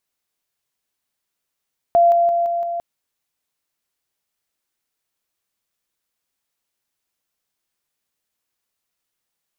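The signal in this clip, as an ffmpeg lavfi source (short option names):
-f lavfi -i "aevalsrc='pow(10,(-9.5-3*floor(t/0.17))/20)*sin(2*PI*687*t)':d=0.85:s=44100"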